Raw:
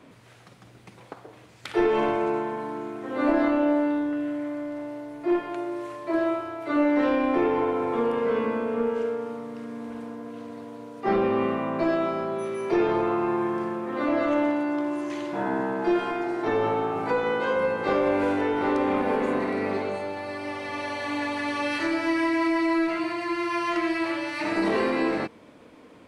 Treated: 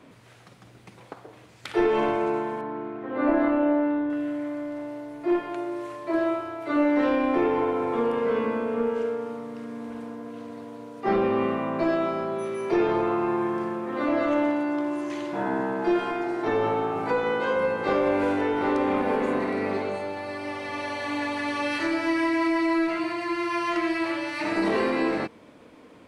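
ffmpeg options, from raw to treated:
ffmpeg -i in.wav -filter_complex "[0:a]asettb=1/sr,asplit=3[link_01][link_02][link_03];[link_01]atrim=end=2.614[link_04];[link_02]atrim=start=2.61:end=4.1,asetpts=PTS-STARTPTS,afade=type=in:duration=0.004:curve=qsin,afade=type=out:start_time=1.486:duration=0.004:curve=qsin,lowpass=2400[link_05];[link_03]atrim=start=4.096[link_06];[link_04][link_05]acrossfade=duration=0.004:curve1=hsin:curve2=qsin[link_07];[link_07][link_06]acrossfade=duration=0.004:curve1=qsin:curve2=hsin" out.wav

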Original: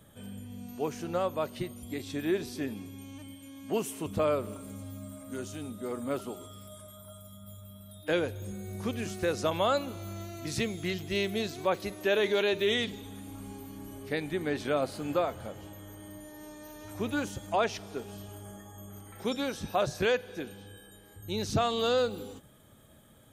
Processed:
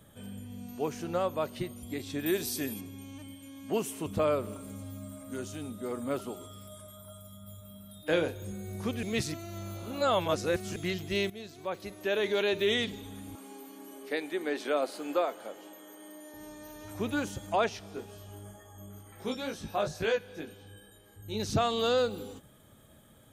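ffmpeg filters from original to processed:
ffmpeg -i in.wav -filter_complex "[0:a]asettb=1/sr,asplit=3[link_01][link_02][link_03];[link_01]atrim=end=2.264[link_04];[link_02]atrim=start=2.26:end=2.81,asetpts=PTS-STARTPTS,afade=type=in:duration=0.004:curve=qsin,afade=type=out:start_time=0.546:duration=0.004:curve=qsin,aemphasis=mode=production:type=75fm[link_05];[link_03]atrim=start=2.806[link_06];[link_04][link_05]acrossfade=duration=0.004:curve1=hsin:curve2=qsin[link_07];[link_07][link_06]acrossfade=duration=0.004:curve1=qsin:curve2=hsin,asettb=1/sr,asplit=3[link_08][link_09][link_10];[link_08]atrim=end=7.574[link_11];[link_09]atrim=start=7.57:end=8.44,asetpts=PTS-STARTPTS,afade=type=in:duration=0.004:curve=qsin,afade=type=out:start_time=0.866:duration=0.004:curve=qsin,asplit=2[link_12][link_13];[link_13]adelay=36,volume=-7.5dB[link_14];[link_12][link_14]amix=inputs=2:normalize=0,atrim=end_sample=38367[link_15];[link_10]atrim=start=8.436[link_16];[link_11][link_15]acrossfade=duration=0.004:curve1=hsin:curve2=qsin[link_17];[link_17][link_16]acrossfade=duration=0.004:curve1=qsin:curve2=hsin,asettb=1/sr,asplit=3[link_18][link_19][link_20];[link_18]atrim=end=13.354[link_21];[link_19]atrim=start=13.35:end=16.34,asetpts=PTS-STARTPTS,afade=type=in:duration=0.004:curve=qsin,afade=type=out:start_time=2.986:duration=0.004:curve=qsin,highpass=frequency=280:width=0.5412,highpass=frequency=280:width=1.3066[link_22];[link_20]atrim=start=16.336[link_23];[link_21][link_22]acrossfade=duration=0.004:curve1=hsin:curve2=qsin[link_24];[link_24][link_23]acrossfade=duration=0.004:curve1=qsin:curve2=hsin,asettb=1/sr,asplit=3[link_25][link_26][link_27];[link_25]atrim=end=17.694[link_28];[link_26]atrim=start=17.69:end=21.4,asetpts=PTS-STARTPTS,afade=type=in:duration=0.004:curve=qsin,afade=type=out:start_time=3.706:duration=0.004:curve=qsin,flanger=delay=17.5:depth=2.3:speed=2.1[link_29];[link_27]atrim=start=21.396[link_30];[link_28][link_29]acrossfade=duration=0.004:curve1=hsin:curve2=qsin[link_31];[link_31][link_30]acrossfade=duration=0.004:curve1=qsin:curve2=hsin,asplit=4[link_32][link_33][link_34][link_35];[link_32]atrim=end=9.032[link_36];[link_33]atrim=start=9.028:end=10.762,asetpts=PTS-STARTPTS,areverse[link_37];[link_34]atrim=start=10.758:end=11.3,asetpts=PTS-STARTPTS,afade=type=out:start_time=0.538:duration=0.004:curve=hsin:silence=0.188365[link_38];[link_35]atrim=start=11.3,asetpts=PTS-STARTPTS,afade=type=in:duration=1.32:silence=0.188365[link_39];[link_36][link_37]acrossfade=duration=0.004:curve1=hsin:curve2=hsin[link_40];[link_38][link_39]concat=n=2:v=0:a=1[link_41];[link_40][link_41]acrossfade=duration=0.004:curve1=hsin:curve2=hsin" out.wav

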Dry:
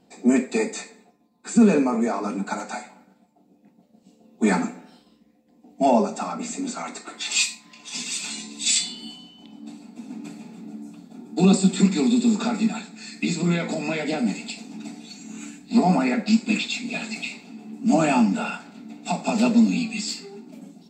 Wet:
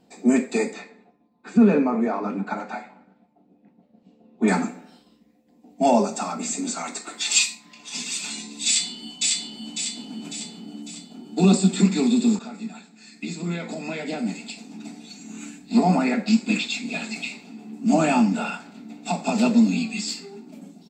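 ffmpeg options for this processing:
ffmpeg -i in.wav -filter_complex "[0:a]asettb=1/sr,asplit=3[link_01][link_02][link_03];[link_01]atrim=end=0.734[link_04];[link_02]atrim=start=0.73:end=4.48,asetpts=PTS-STARTPTS,afade=type=in:duration=0.004:curve=qsin,afade=type=out:start_time=3.746:duration=0.004:curve=qsin,lowpass=2800[link_05];[link_03]atrim=start=4.476[link_06];[link_04][link_05]acrossfade=duration=0.004:curve1=hsin:curve2=qsin[link_07];[link_07][link_06]acrossfade=duration=0.004:curve1=qsin:curve2=hsin,asettb=1/sr,asplit=3[link_08][link_09][link_10];[link_08]atrim=end=5.854[link_11];[link_09]atrim=start=5.85:end=7.39,asetpts=PTS-STARTPTS,afade=type=in:duration=0.004:curve=qsin,afade=type=out:start_time=1.536:duration=0.004:curve=qsin,highshelf=frequency=4400:gain=8[link_12];[link_10]atrim=start=7.386[link_13];[link_11][link_12]acrossfade=duration=0.004:curve1=hsin:curve2=qsin[link_14];[link_14][link_13]acrossfade=duration=0.004:curve1=qsin:curve2=hsin,asplit=2[link_15][link_16];[link_16]afade=type=in:start_time=8.66:duration=0.01,afade=type=out:start_time=9.72:duration=0.01,aecho=0:1:550|1100|1650|2200|2750|3300|3850:0.841395|0.420698|0.210349|0.105174|0.0525872|0.0262936|0.0131468[link_17];[link_15][link_17]amix=inputs=2:normalize=0,asplit=2[link_18][link_19];[link_18]atrim=end=12.39,asetpts=PTS-STARTPTS,afade=type=out:start_time=12.386:duration=0.004:curve=hsin:silence=0.211349[link_20];[link_19]atrim=start=12.39,asetpts=PTS-STARTPTS,afade=type=in:duration=3.13:silence=0.211349[link_21];[link_20][link_21]concat=n=2:v=0:a=1" out.wav

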